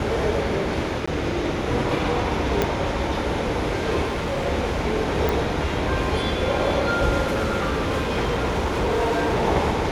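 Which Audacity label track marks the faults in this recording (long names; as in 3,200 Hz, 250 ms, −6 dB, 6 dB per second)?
1.060000	1.070000	drop-out 15 ms
2.620000	2.620000	click −7 dBFS
4.050000	4.470000	clipping −21.5 dBFS
5.290000	5.290000	click
7.290000	9.440000	clipping −18.5 dBFS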